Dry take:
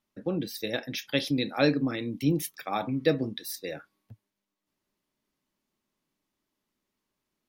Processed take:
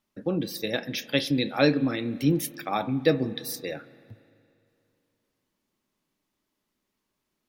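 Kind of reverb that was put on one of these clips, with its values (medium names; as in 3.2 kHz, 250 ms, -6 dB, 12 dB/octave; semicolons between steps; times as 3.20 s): spring tank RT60 2.6 s, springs 38/55 ms, chirp 55 ms, DRR 17 dB; trim +2.5 dB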